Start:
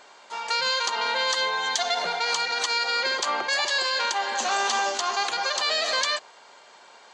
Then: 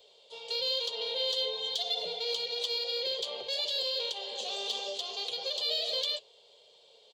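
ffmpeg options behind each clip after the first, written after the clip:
ffmpeg -i in.wav -filter_complex "[0:a]firequalizer=gain_entry='entry(110,0);entry(300,-20);entry(450,5);entry(780,-15);entry(1500,-28);entry(3300,5);entry(6300,-12);entry(12000,3)':delay=0.05:min_phase=1,flanger=delay=3.9:depth=7.6:regen=-58:speed=1:shape=triangular,acrossover=split=160|810|4800[link_01][link_02][link_03][link_04];[link_04]asoftclip=type=tanh:threshold=-36.5dB[link_05];[link_01][link_02][link_03][link_05]amix=inputs=4:normalize=0" out.wav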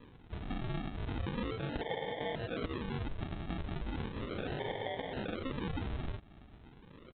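ffmpeg -i in.wav -af "aresample=8000,acrusher=samples=11:mix=1:aa=0.000001:lfo=1:lforange=11:lforate=0.36,aresample=44100,acompressor=threshold=-43dB:ratio=3,volume=6dB" out.wav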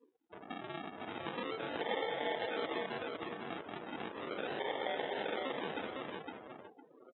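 ffmpeg -i in.wav -af "highpass=400,aecho=1:1:508|1016|1524|2032:0.668|0.187|0.0524|0.0147,afftdn=noise_reduction=30:noise_floor=-51,volume=2dB" out.wav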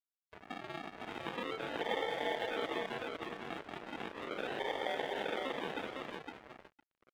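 ffmpeg -i in.wav -af "aeval=exprs='sgn(val(0))*max(abs(val(0))-0.00251,0)':channel_layout=same,volume=1.5dB" out.wav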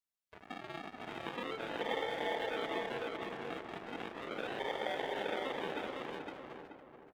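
ffmpeg -i in.wav -filter_complex "[0:a]asplit=2[link_01][link_02];[link_02]adelay=430,lowpass=frequency=1500:poles=1,volume=-5.5dB,asplit=2[link_03][link_04];[link_04]adelay=430,lowpass=frequency=1500:poles=1,volume=0.44,asplit=2[link_05][link_06];[link_06]adelay=430,lowpass=frequency=1500:poles=1,volume=0.44,asplit=2[link_07][link_08];[link_08]adelay=430,lowpass=frequency=1500:poles=1,volume=0.44,asplit=2[link_09][link_10];[link_10]adelay=430,lowpass=frequency=1500:poles=1,volume=0.44[link_11];[link_01][link_03][link_05][link_07][link_09][link_11]amix=inputs=6:normalize=0,volume=-1dB" out.wav

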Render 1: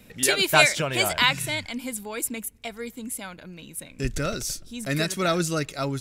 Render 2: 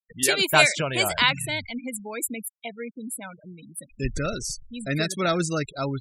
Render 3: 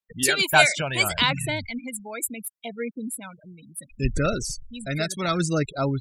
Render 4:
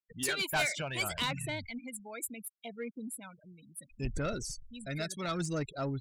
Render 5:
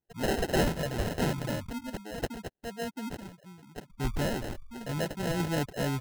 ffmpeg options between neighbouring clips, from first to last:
ffmpeg -i in.wav -af "afftfilt=real='re*gte(hypot(re,im),0.0282)':imag='im*gte(hypot(re,im),0.0282)':win_size=1024:overlap=0.75" out.wav
ffmpeg -i in.wav -af "aphaser=in_gain=1:out_gain=1:delay=1.4:decay=0.48:speed=0.7:type=sinusoidal,volume=-1dB" out.wav
ffmpeg -i in.wav -af "asoftclip=type=tanh:threshold=-16dB,volume=-9dB" out.wav
ffmpeg -i in.wav -af "acrusher=samples=38:mix=1:aa=0.000001,volume=4.5dB" out.wav

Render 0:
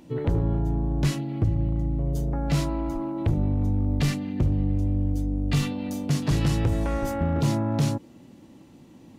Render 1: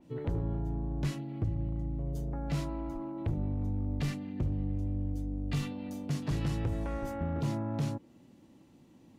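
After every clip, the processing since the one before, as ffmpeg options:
ffmpeg -i in.wav -af "adynamicequalizer=threshold=0.00398:dfrequency=3200:dqfactor=0.7:tfrequency=3200:tqfactor=0.7:attack=5:release=100:ratio=0.375:range=2.5:mode=cutabove:tftype=highshelf,volume=-9dB" out.wav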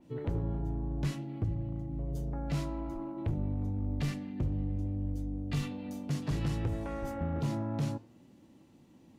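ffmpeg -i in.wav -af "flanger=delay=8.7:depth=6.5:regen=-82:speed=0.58:shape=sinusoidal,volume=4dB" out.wav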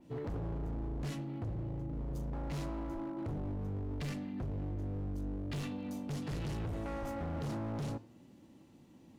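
ffmpeg -i in.wav -af "volume=35.5dB,asoftclip=hard,volume=-35.5dB" out.wav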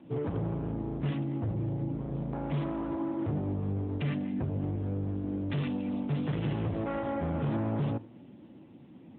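ffmpeg -i in.wav -af "volume=8dB" -ar 8000 -c:a libopencore_amrnb -b:a 10200 out.amr

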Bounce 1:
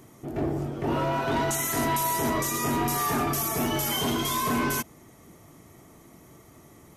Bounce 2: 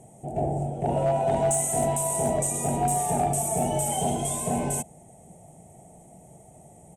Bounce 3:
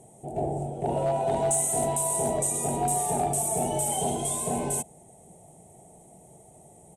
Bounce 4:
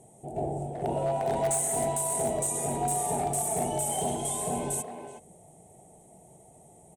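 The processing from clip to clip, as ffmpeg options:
ffmpeg -i in.wav -af "firequalizer=gain_entry='entry(110,0);entry(170,6);entry(290,-8);entry(500,3);entry(770,11);entry(1100,-19);entry(2600,-8);entry(4800,-18);entry(8300,12);entry(15000,-28)':delay=0.05:min_phase=1,asoftclip=type=hard:threshold=-17dB" out.wav
ffmpeg -i in.wav -af "equalizer=frequency=400:width_type=o:width=0.67:gain=6,equalizer=frequency=1000:width_type=o:width=0.67:gain=4,equalizer=frequency=4000:width_type=o:width=0.67:gain=7,equalizer=frequency=10000:width_type=o:width=0.67:gain=7,volume=-4.5dB" out.wav
ffmpeg -i in.wav -filter_complex "[0:a]asplit=2[link_01][link_02];[link_02]adelay=370,highpass=300,lowpass=3400,asoftclip=type=hard:threshold=-25dB,volume=-7dB[link_03];[link_01][link_03]amix=inputs=2:normalize=0,asplit=2[link_04][link_05];[link_05]aeval=exprs='(mod(7.5*val(0)+1,2)-1)/7.5':channel_layout=same,volume=-12dB[link_06];[link_04][link_06]amix=inputs=2:normalize=0,volume=-4.5dB" out.wav

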